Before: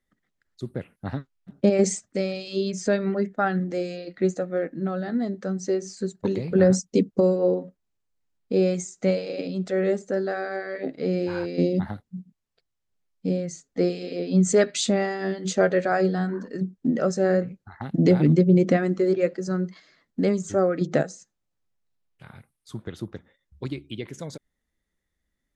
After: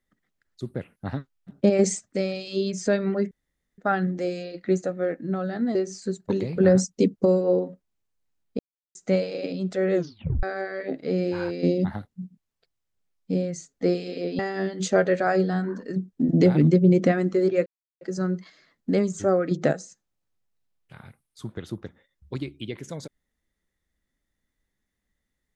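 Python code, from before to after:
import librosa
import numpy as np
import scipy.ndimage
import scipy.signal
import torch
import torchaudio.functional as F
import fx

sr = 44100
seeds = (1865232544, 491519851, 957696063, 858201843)

y = fx.edit(x, sr, fx.insert_room_tone(at_s=3.31, length_s=0.47),
    fx.cut(start_s=5.28, length_s=0.42),
    fx.silence(start_s=8.54, length_s=0.36),
    fx.tape_stop(start_s=9.89, length_s=0.49),
    fx.cut(start_s=14.34, length_s=0.7),
    fx.cut(start_s=16.94, length_s=1.0),
    fx.insert_silence(at_s=19.31, length_s=0.35), tone=tone)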